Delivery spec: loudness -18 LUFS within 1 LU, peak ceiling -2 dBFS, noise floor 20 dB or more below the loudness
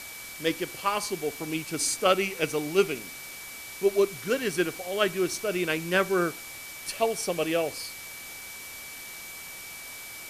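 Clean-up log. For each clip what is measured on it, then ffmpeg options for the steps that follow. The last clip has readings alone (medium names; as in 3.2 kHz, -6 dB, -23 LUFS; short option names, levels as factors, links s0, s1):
steady tone 2.3 kHz; tone level -43 dBFS; noise floor -42 dBFS; noise floor target -49 dBFS; loudness -29.0 LUFS; peak level -9.0 dBFS; loudness target -18.0 LUFS
-> -af "bandreject=f=2300:w=30"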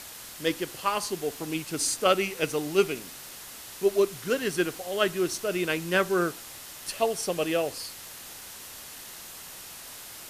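steady tone not found; noise floor -44 dBFS; noise floor target -48 dBFS
-> -af "afftdn=nr=6:nf=-44"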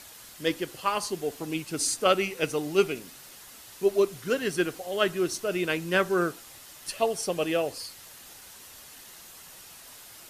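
noise floor -48 dBFS; loudness -28.0 LUFS; peak level -9.5 dBFS; loudness target -18.0 LUFS
-> -af "volume=3.16,alimiter=limit=0.794:level=0:latency=1"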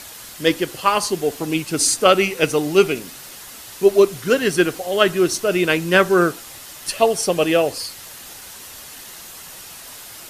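loudness -18.0 LUFS; peak level -2.0 dBFS; noise floor -38 dBFS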